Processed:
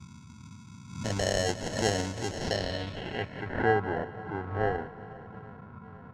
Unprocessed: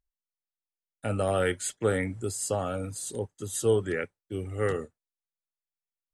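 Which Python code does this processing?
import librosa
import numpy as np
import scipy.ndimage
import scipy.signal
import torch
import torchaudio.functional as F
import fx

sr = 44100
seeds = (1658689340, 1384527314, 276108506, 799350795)

p1 = x + fx.echo_swing(x, sr, ms=836, ratio=1.5, feedback_pct=54, wet_db=-20.5, dry=0)
p2 = fx.dmg_noise_band(p1, sr, seeds[0], low_hz=78.0, high_hz=230.0, level_db=-46.0)
p3 = fx.sample_hold(p2, sr, seeds[1], rate_hz=1200.0, jitter_pct=0)
p4 = fx.filter_sweep_lowpass(p3, sr, from_hz=6600.0, to_hz=1300.0, start_s=2.32, end_s=3.77, q=2.8)
p5 = fx.echo_feedback(p4, sr, ms=181, feedback_pct=58, wet_db=-17.0)
p6 = fx.pre_swell(p5, sr, db_per_s=89.0)
y = p6 * 10.0 ** (-2.5 / 20.0)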